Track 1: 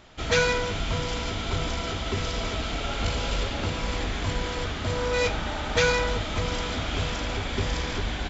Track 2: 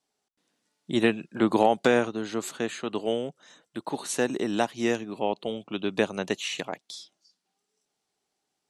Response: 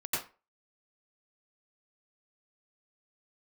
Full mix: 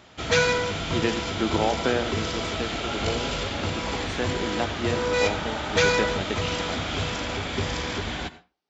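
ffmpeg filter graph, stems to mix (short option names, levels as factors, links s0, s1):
-filter_complex "[0:a]volume=1.12,asplit=2[s0][s1];[s1]volume=0.106[s2];[1:a]lowpass=f=5000:w=0.5412,lowpass=f=5000:w=1.3066,volume=0.631,asplit=2[s3][s4];[s4]volume=0.158[s5];[2:a]atrim=start_sample=2205[s6];[s2][s5]amix=inputs=2:normalize=0[s7];[s7][s6]afir=irnorm=-1:irlink=0[s8];[s0][s3][s8]amix=inputs=3:normalize=0,highpass=83"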